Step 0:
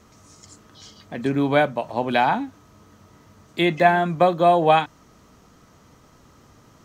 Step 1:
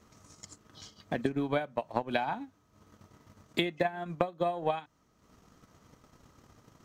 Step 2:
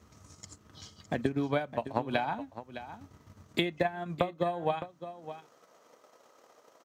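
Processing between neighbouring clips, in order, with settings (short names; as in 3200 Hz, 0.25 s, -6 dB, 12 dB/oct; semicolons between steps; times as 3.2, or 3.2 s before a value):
transient shaper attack +12 dB, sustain -8 dB; compressor 16:1, threshold -17 dBFS, peak gain reduction 16.5 dB; gain -8.5 dB
high-pass sweep 72 Hz -> 540 Hz, 4.67–5.52; echo 0.611 s -12.5 dB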